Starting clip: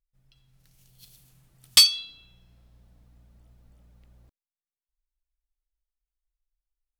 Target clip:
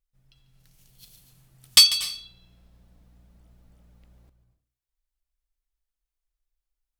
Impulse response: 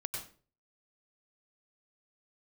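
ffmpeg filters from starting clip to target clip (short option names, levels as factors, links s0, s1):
-filter_complex "[0:a]asplit=2[s0][s1];[1:a]atrim=start_sample=2205,adelay=144[s2];[s1][s2]afir=irnorm=-1:irlink=0,volume=0.237[s3];[s0][s3]amix=inputs=2:normalize=0,volume=1.19"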